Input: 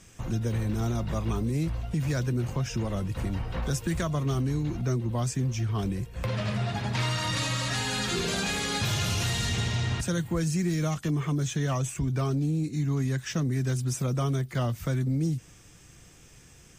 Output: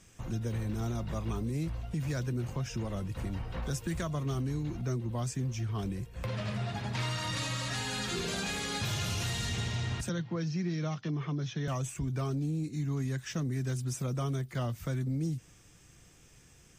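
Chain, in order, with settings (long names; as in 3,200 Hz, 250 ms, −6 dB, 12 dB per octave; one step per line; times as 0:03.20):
0:10.09–0:11.68: Chebyshev band-pass filter 110–5,700 Hz, order 5
level −5.5 dB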